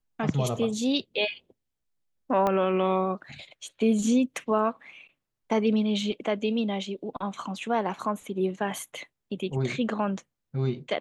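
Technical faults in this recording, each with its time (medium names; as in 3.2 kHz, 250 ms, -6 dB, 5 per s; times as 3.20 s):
2.47 s: pop -14 dBFS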